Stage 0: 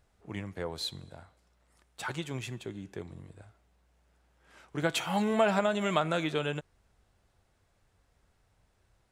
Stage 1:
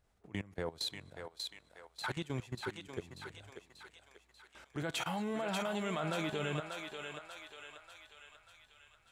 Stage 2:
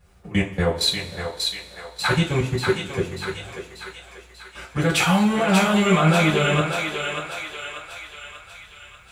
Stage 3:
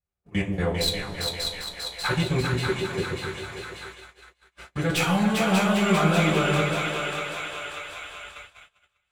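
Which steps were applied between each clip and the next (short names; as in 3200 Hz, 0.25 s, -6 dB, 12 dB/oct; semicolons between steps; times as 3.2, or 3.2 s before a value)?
level quantiser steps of 19 dB; on a send: thinning echo 0.589 s, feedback 58%, high-pass 720 Hz, level -3.5 dB; on the sum: gain +1.5 dB
two-slope reverb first 0.26 s, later 1.7 s, from -20 dB, DRR -9.5 dB; gain +8.5 dB
tracing distortion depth 0.034 ms; split-band echo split 770 Hz, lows 0.131 s, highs 0.398 s, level -4 dB; gate -36 dBFS, range -29 dB; gain -5 dB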